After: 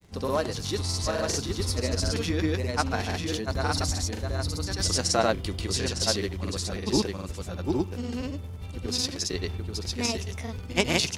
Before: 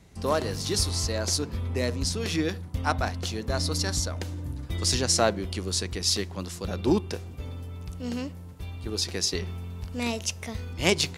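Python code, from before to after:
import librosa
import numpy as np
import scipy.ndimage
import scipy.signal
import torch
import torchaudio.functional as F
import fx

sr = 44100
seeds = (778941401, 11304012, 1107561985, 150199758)

y = fx.dmg_crackle(x, sr, seeds[0], per_s=42.0, level_db=-43.0)
y = y + 10.0 ** (-3.5 / 20.0) * np.pad(y, (int(826 * sr / 1000.0), 0))[:len(y)]
y = fx.granulator(y, sr, seeds[1], grain_ms=100.0, per_s=20.0, spray_ms=100.0, spread_st=0)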